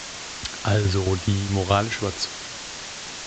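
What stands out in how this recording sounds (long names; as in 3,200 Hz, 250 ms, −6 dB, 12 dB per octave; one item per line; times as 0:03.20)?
tremolo saw down 4.7 Hz, depth 70%
a quantiser's noise floor 6 bits, dither triangular
A-law companding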